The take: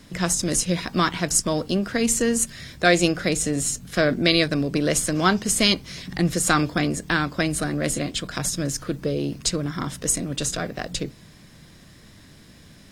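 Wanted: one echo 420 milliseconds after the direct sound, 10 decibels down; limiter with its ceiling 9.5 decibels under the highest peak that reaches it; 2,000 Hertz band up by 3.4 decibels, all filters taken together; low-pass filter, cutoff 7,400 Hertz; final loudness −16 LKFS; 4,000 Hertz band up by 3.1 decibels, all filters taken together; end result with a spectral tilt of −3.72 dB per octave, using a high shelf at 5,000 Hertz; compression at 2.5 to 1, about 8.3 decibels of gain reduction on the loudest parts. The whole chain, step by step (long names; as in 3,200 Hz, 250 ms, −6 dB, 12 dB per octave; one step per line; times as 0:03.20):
low-pass filter 7,400 Hz
parametric band 2,000 Hz +4 dB
parametric band 4,000 Hz +5.5 dB
high-shelf EQ 5,000 Hz −5.5 dB
downward compressor 2.5 to 1, threshold −24 dBFS
brickwall limiter −16.5 dBFS
single-tap delay 420 ms −10 dB
level +12.5 dB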